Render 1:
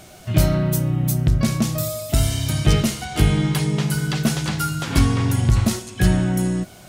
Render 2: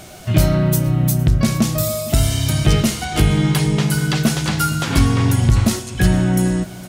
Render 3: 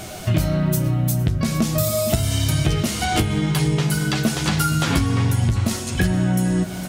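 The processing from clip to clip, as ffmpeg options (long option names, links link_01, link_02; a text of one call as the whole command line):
ffmpeg -i in.wav -filter_complex "[0:a]aecho=1:1:461:0.1,asplit=2[link_01][link_02];[link_02]alimiter=limit=-13.5dB:level=0:latency=1:release=382,volume=2dB[link_03];[link_01][link_03]amix=inputs=2:normalize=0,volume=-1.5dB" out.wav
ffmpeg -i in.wav -af "acompressor=threshold=-21dB:ratio=6,flanger=delay=9.3:depth=3.1:regen=-43:speed=0.94:shape=sinusoidal,volume=8.5dB" out.wav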